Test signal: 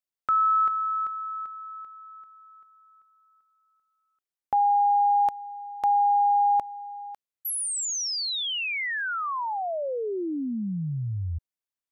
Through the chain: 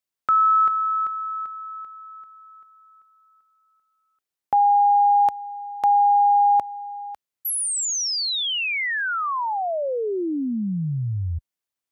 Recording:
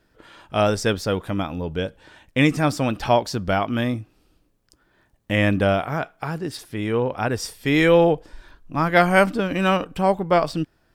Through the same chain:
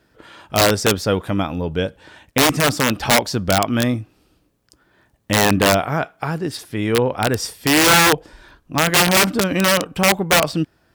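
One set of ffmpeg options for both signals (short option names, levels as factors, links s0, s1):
-af "aeval=exprs='(mod(3.76*val(0)+1,2)-1)/3.76':c=same,highpass=52,volume=1.68"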